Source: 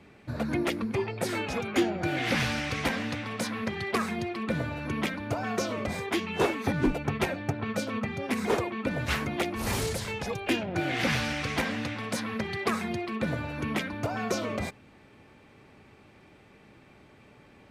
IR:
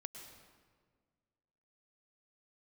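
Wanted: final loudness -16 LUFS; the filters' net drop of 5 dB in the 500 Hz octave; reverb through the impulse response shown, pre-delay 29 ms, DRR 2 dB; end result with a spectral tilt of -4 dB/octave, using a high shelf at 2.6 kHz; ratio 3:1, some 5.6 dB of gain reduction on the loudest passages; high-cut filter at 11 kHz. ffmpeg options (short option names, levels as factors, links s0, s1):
-filter_complex "[0:a]lowpass=11000,equalizer=f=500:t=o:g=-7,highshelf=f=2600:g=5,acompressor=threshold=0.0316:ratio=3,asplit=2[s0][s1];[1:a]atrim=start_sample=2205,adelay=29[s2];[s1][s2]afir=irnorm=-1:irlink=0,volume=1.26[s3];[s0][s3]amix=inputs=2:normalize=0,volume=5.96"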